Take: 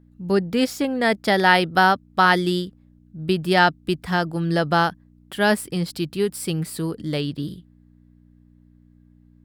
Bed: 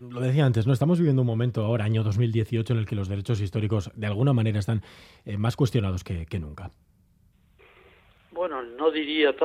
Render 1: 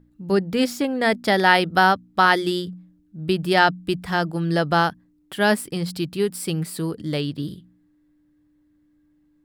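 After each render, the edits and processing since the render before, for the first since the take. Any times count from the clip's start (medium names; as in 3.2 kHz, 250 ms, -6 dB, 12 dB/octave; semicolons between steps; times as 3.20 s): de-hum 60 Hz, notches 4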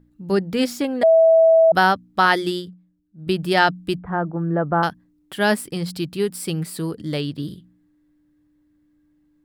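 1.03–1.72 s: bleep 652 Hz -9.5 dBFS; 2.48–3.27 s: upward expansion, over -41 dBFS; 3.98–4.83 s: low-pass 1.4 kHz 24 dB/octave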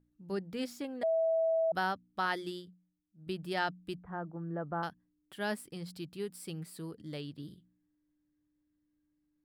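trim -16.5 dB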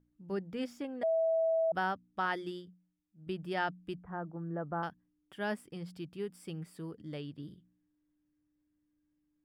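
treble shelf 6 kHz -12 dB; band-stop 4.1 kHz, Q 5.3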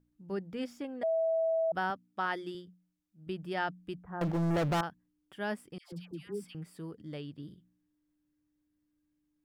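1.90–2.55 s: high-pass 150 Hz; 4.21–4.81 s: waveshaping leveller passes 5; 5.78–6.55 s: phase dispersion lows, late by 144 ms, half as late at 1 kHz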